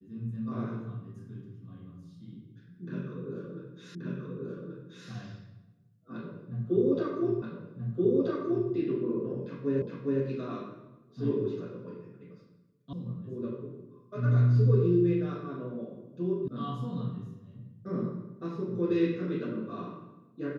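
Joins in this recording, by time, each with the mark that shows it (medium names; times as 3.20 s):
3.95 s: repeat of the last 1.13 s
7.42 s: repeat of the last 1.28 s
9.82 s: repeat of the last 0.41 s
12.93 s: sound stops dead
16.48 s: sound stops dead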